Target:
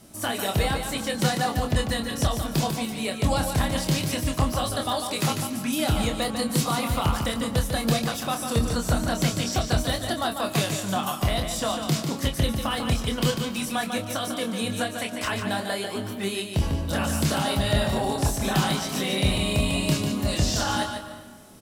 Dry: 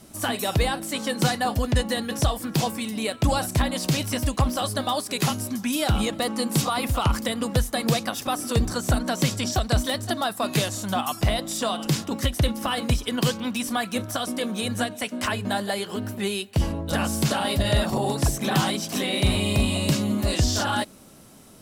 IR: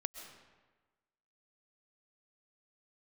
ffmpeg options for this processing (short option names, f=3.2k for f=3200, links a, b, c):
-filter_complex "[0:a]asplit=2[a][b];[b]adelay=26,volume=-6dB[c];[a][c]amix=inputs=2:normalize=0,asplit=2[d][e];[1:a]atrim=start_sample=2205,adelay=147[f];[e][f]afir=irnorm=-1:irlink=0,volume=-5dB[g];[d][g]amix=inputs=2:normalize=0,volume=-2.5dB"